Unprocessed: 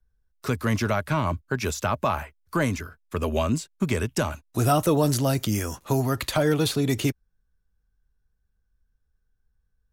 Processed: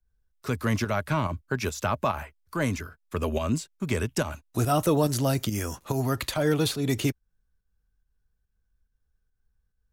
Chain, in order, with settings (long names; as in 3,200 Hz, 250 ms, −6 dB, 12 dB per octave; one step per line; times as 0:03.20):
fake sidechain pumping 142 BPM, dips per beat 1, −8 dB, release 172 ms
level −1.5 dB